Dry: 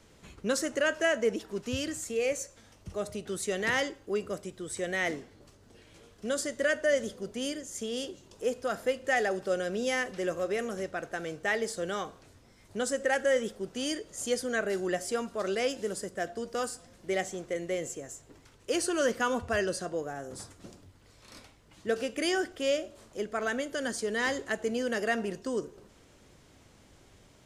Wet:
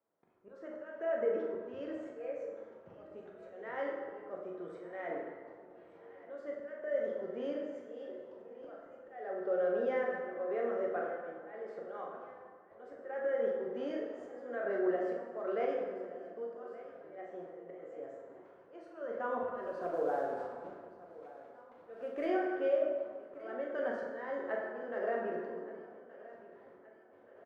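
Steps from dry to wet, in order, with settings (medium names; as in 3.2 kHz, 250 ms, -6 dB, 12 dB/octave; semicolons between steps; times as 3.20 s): high-pass 630 Hz 12 dB/octave; gate with hold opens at -52 dBFS; low-pass 1.1 kHz 12 dB/octave; tilt EQ -2.5 dB/octave; 19.54–22.26 s: waveshaping leveller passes 1; peak limiter -28.5 dBFS, peak gain reduction 8 dB; slow attack 446 ms; doubling 41 ms -7.5 dB; feedback delay 1173 ms, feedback 52%, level -18 dB; plate-style reverb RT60 1.8 s, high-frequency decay 0.55×, DRR -1 dB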